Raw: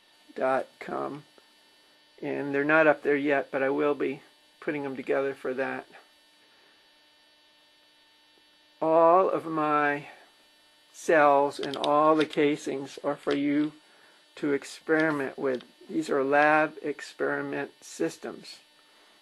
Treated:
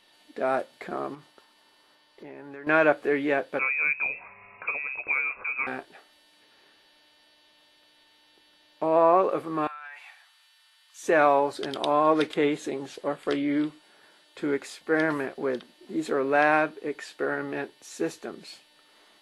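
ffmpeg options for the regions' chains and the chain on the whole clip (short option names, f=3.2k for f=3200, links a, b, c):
-filter_complex "[0:a]asettb=1/sr,asplit=3[a][b][c];[a]atrim=end=1.144[d];[b]atrim=start=1.14:end=2.67,asetpts=PTS-STARTPTS,afade=t=in:d=0.004:c=qsin,afade=t=out:st=1.526:d=0.004:c=qsin,agate=range=-33dB:threshold=-58dB:ratio=3:release=100:detection=peak,equalizer=f=1.1k:w=1.8:g=7,acompressor=threshold=-43dB:ratio=3:attack=3.2:release=140:knee=1:detection=peak[e];[c]atrim=start=2.666[f];[d][e]acrossfade=d=0.004:c1=hsin:c2=qsin[g];[g][f]acrossfade=d=0.004:c1=qsin:c2=hsin,asettb=1/sr,asplit=3[h][i][j];[h]atrim=end=3.594[k];[i]atrim=start=3.59:end=5.67,asetpts=PTS-STARTPTS,afade=t=in:d=0.004:c=qsin,afade=t=out:st=2.076:d=0.004:c=qsin,acompressor=mode=upward:threshold=-29dB:ratio=2.5:attack=3.2:release=140:knee=2.83:detection=peak,equalizer=f=970:w=3.6:g=-10,lowpass=f=2.4k:t=q:w=0.5098,lowpass=f=2.4k:t=q:w=0.6013,lowpass=f=2.4k:t=q:w=0.9,lowpass=f=2.4k:t=q:w=2.563,afreqshift=-2800[l];[j]atrim=start=5.666[m];[k][l]acrossfade=d=0.004:c1=hsin:c2=qsin[n];[n][m]acrossfade=d=0.004:c1=qsin:c2=hsin,asettb=1/sr,asplit=3[o][p][q];[o]atrim=end=9.674[r];[p]atrim=start=9.67:end=11.03,asetpts=PTS-STARTPTS,afade=t=in:d=0.004:c=qsin,afade=t=out:st=1.356:d=0.004:c=qsin,highpass=f=1k:w=0.5412,highpass=f=1k:w=1.3066,acompressor=threshold=-38dB:ratio=12:attack=3.2:release=140:knee=1:detection=peak[s];[q]atrim=start=11.026[t];[r][s]acrossfade=d=0.004:c1=hsin:c2=qsin[u];[u][t]acrossfade=d=0.004:c1=qsin:c2=hsin"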